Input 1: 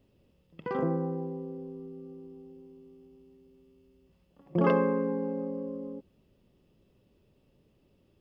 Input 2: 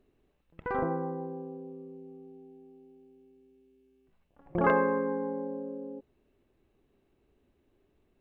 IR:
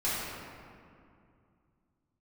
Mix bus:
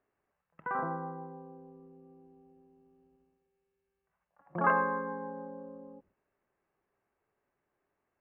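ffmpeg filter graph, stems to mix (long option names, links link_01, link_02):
-filter_complex "[0:a]agate=range=-14dB:threshold=-56dB:ratio=16:detection=peak,volume=-6.5dB[link_01];[1:a]highpass=830,volume=1.5dB[link_02];[link_01][link_02]amix=inputs=2:normalize=0,lowpass=frequency=1900:width=0.5412,lowpass=frequency=1900:width=1.3066,lowshelf=frequency=410:gain=-4.5"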